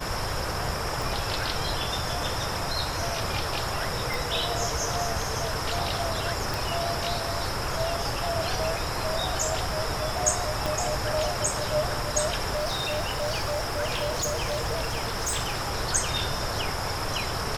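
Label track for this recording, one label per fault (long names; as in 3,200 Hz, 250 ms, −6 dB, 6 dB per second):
1.020000	1.020000	click
4.140000	4.140000	click
6.540000	6.540000	click
10.660000	10.660000	click
12.540000	15.730000	clipping −23.5 dBFS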